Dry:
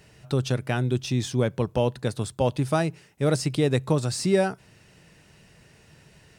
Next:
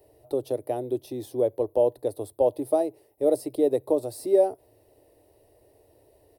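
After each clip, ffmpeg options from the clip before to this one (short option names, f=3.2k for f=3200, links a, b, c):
-filter_complex "[0:a]equalizer=f=1.9k:t=o:w=0.41:g=8.5,acrossover=split=140|3700[a][b][c];[a]acompressor=threshold=-40dB:ratio=6[d];[d][b][c]amix=inputs=3:normalize=0,firequalizer=gain_entry='entry(110,0);entry(160,-24);entry(290,7);entry(600,12);entry(1500,-21);entry(4000,-7);entry(6800,-14);entry(11000,12)':delay=0.05:min_phase=1,volume=-7dB"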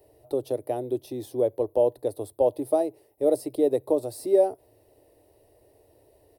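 -af anull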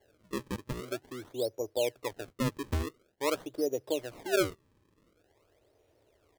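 -af "acrusher=samples=35:mix=1:aa=0.000001:lfo=1:lforange=56:lforate=0.47,volume=-8.5dB"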